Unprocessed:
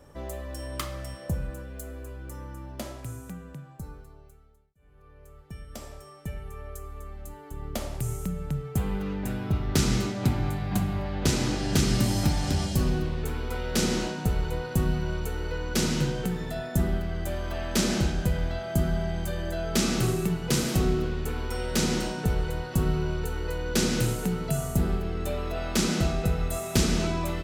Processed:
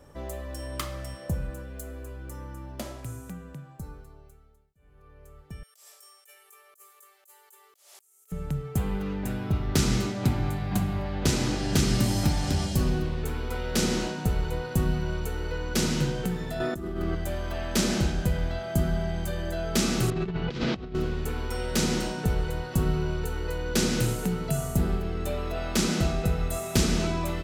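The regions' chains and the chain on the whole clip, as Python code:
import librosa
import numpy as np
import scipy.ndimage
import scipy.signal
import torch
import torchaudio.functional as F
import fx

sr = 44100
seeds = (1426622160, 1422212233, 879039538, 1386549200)

y = fx.chain(x, sr, fx.ellip_highpass(hz=380.0, order=4, stop_db=40),
    fx.differentiator(),
    fx.over_compress(threshold_db=-57.0, ratio=-1.0), at=(5.63, 8.32))
y = fx.chain(y, sr, fx.small_body(hz=(340.0, 1200.0), ring_ms=40, db=14),
    fx.over_compress(threshold_db=-30.0, ratio=-1.0), at=(16.6, 17.15))
y = fx.chain(y, sr, fx.lowpass(hz=4100.0, slope=24),
    fx.over_compress(threshold_db=-29.0, ratio=-0.5), at=(20.1, 20.95))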